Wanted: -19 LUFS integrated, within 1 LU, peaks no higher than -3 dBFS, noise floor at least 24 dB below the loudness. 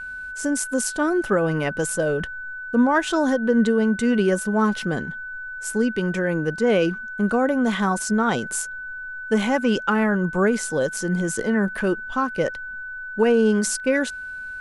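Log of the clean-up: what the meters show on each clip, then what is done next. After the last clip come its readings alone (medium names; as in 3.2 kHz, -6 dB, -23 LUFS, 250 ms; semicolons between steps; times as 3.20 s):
steady tone 1.5 kHz; tone level -31 dBFS; loudness -22.0 LUFS; peak level -8.5 dBFS; loudness target -19.0 LUFS
-> band-stop 1.5 kHz, Q 30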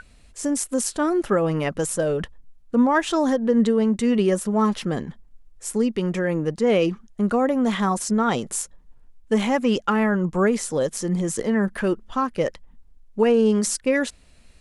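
steady tone not found; loudness -22.5 LUFS; peak level -8.0 dBFS; loudness target -19.0 LUFS
-> trim +3.5 dB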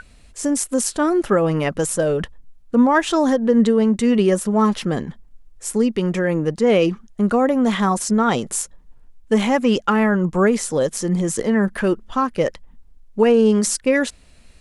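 loudness -19.0 LUFS; peak level -4.5 dBFS; noise floor -48 dBFS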